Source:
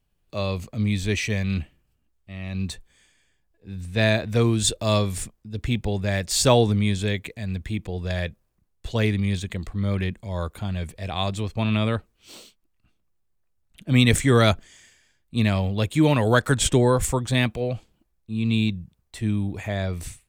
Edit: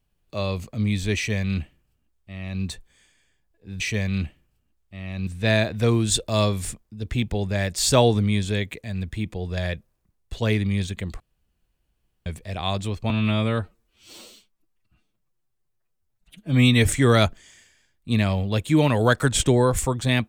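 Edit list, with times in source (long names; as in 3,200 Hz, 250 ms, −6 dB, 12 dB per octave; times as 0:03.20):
0:01.16–0:02.63: duplicate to 0:03.80
0:09.73–0:10.79: fill with room tone
0:11.63–0:14.17: time-stretch 1.5×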